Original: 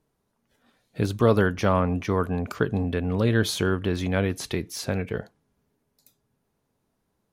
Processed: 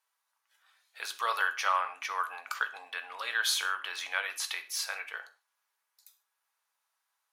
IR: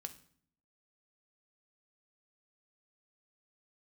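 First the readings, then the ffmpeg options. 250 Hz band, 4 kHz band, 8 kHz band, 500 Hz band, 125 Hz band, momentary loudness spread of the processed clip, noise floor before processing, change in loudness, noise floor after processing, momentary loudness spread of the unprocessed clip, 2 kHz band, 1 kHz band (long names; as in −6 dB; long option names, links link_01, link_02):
below −40 dB, +1.0 dB, +1.0 dB, −21.5 dB, below −40 dB, 12 LU, −76 dBFS, −7.0 dB, −83 dBFS, 9 LU, +1.0 dB, −1.0 dB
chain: -filter_complex "[0:a]highpass=frequency=1000:width=0.5412,highpass=frequency=1000:width=1.3066[link_01];[1:a]atrim=start_sample=2205,afade=type=out:start_time=0.21:duration=0.01,atrim=end_sample=9702[link_02];[link_01][link_02]afir=irnorm=-1:irlink=0,volume=5dB"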